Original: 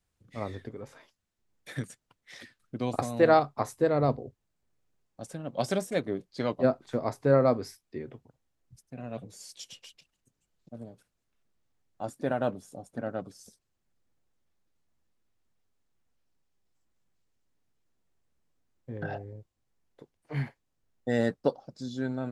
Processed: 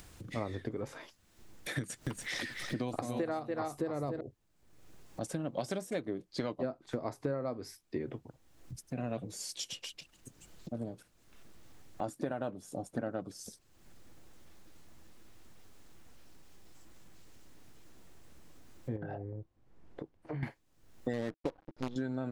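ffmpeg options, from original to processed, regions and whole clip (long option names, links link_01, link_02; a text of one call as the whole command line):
ffmpeg -i in.wav -filter_complex "[0:a]asettb=1/sr,asplit=3[link_01][link_02][link_03];[link_01]atrim=end=1.784[link_04];[link_02]atrim=start=1.78:end=4.21,asetpts=PTS-STARTPTS,afade=type=in:duration=0.004:curve=qsin,afade=type=out:start_time=2.426:duration=0.004:curve=qsin,acompressor=mode=upward:threshold=-32dB:ratio=2.5:attack=3.2:release=140:knee=2.83:detection=peak,aecho=1:1:287:0.501,atrim=end_sample=107163[link_05];[link_03]atrim=start=4.206[link_06];[link_04][link_05]acrossfade=duration=0.004:curve1=hsin:curve2=qsin[link_07];[link_07][link_06]acrossfade=duration=0.004:curve1=qsin:curve2=hsin,asettb=1/sr,asplit=3[link_08][link_09][link_10];[link_08]atrim=end=18.964[link_11];[link_09]atrim=start=18.96:end=20.43,asetpts=PTS-STARTPTS,afade=type=in:duration=0.004:curve=qsin,afade=type=out:start_time=1.466:duration=0.004:curve=qsin,lowpass=frequency=1000:poles=1,acompressor=threshold=-42dB:ratio=5:attack=3.2:release=140:knee=1:detection=peak[link_12];[link_10]atrim=start=20.426[link_13];[link_11][link_12]acrossfade=duration=0.004:curve1=hsin:curve2=qsin[link_14];[link_14][link_13]acrossfade=duration=0.004:curve1=qsin:curve2=hsin,asettb=1/sr,asplit=3[link_15][link_16][link_17];[link_15]atrim=end=21.134[link_18];[link_16]atrim=start=21.13:end=21.96,asetpts=PTS-STARTPTS,afade=type=in:duration=0.004:curve=qsin,afade=type=out:start_time=0.826:duration=0.004:curve=qsin,acrusher=bits=6:dc=4:mix=0:aa=0.000001,adynamicsmooth=sensitivity=3:basefreq=1800[link_19];[link_17]atrim=start=21.956[link_20];[link_18][link_19]acrossfade=duration=0.004:curve1=hsin:curve2=qsin[link_21];[link_21][link_20]acrossfade=duration=0.004:curve1=qsin:curve2=hsin,acompressor=mode=upward:threshold=-42dB:ratio=2.5,equalizer=frequency=320:width=7.5:gain=6,acompressor=threshold=-36dB:ratio=16,volume=4.5dB" out.wav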